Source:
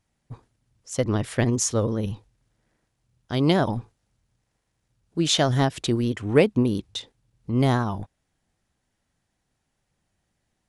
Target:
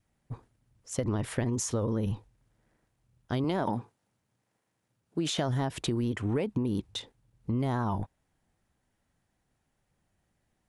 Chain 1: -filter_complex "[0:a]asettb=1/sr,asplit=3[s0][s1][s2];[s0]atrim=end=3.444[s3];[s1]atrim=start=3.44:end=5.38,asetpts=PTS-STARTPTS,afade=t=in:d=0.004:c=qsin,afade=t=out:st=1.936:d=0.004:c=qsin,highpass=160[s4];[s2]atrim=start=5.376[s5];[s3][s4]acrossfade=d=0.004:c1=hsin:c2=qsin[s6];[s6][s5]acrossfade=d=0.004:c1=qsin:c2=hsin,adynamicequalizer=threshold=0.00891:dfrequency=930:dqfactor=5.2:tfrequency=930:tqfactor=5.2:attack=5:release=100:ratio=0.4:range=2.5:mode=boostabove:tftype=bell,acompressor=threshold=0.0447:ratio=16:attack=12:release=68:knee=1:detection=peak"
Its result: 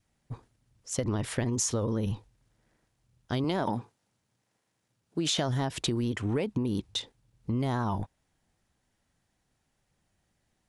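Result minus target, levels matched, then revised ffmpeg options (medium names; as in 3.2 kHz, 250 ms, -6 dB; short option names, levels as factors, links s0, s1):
4 kHz band +3.5 dB
-filter_complex "[0:a]asettb=1/sr,asplit=3[s0][s1][s2];[s0]atrim=end=3.444[s3];[s1]atrim=start=3.44:end=5.38,asetpts=PTS-STARTPTS,afade=t=in:d=0.004:c=qsin,afade=t=out:st=1.936:d=0.004:c=qsin,highpass=160[s4];[s2]atrim=start=5.376[s5];[s3][s4]acrossfade=d=0.004:c1=hsin:c2=qsin[s6];[s6][s5]acrossfade=d=0.004:c1=qsin:c2=hsin,adynamicequalizer=threshold=0.00891:dfrequency=930:dqfactor=5.2:tfrequency=930:tqfactor=5.2:attack=5:release=100:ratio=0.4:range=2.5:mode=boostabove:tftype=bell,acompressor=threshold=0.0447:ratio=16:attack=12:release=68:knee=1:detection=peak,equalizer=f=5100:w=0.65:g=-5.5"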